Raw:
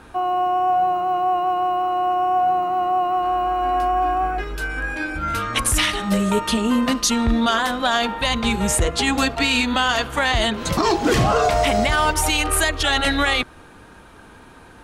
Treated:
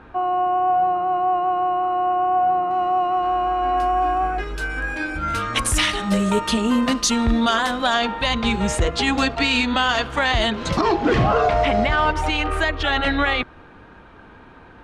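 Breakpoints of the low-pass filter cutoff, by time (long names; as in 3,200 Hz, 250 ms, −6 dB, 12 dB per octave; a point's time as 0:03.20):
2,400 Hz
from 0:02.71 5,500 Hz
from 0:03.78 9,600 Hz
from 0:07.94 5,600 Hz
from 0:10.81 2,900 Hz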